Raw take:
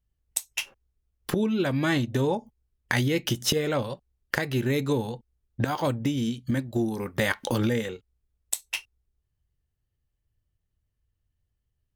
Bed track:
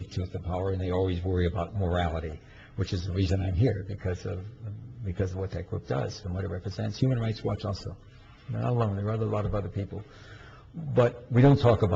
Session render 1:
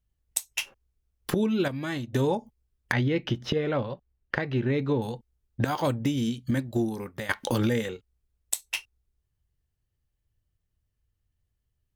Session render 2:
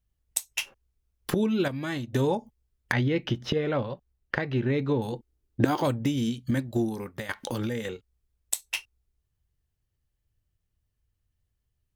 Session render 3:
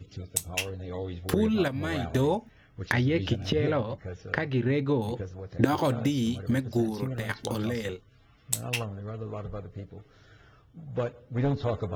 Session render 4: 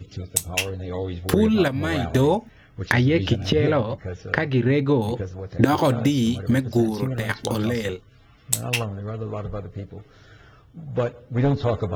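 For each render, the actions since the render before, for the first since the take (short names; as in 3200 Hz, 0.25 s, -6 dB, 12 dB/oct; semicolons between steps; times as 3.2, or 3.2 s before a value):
1.68–2.13 gain -7.5 dB; 2.92–5.02 air absorption 280 m; 6.79–7.29 fade out, to -14.5 dB
5.12–5.83 bell 330 Hz +11 dB; 7.21–7.85 compressor 1.5:1, threshold -36 dBFS
add bed track -8 dB
gain +6.5 dB; limiter -2 dBFS, peak gain reduction 2 dB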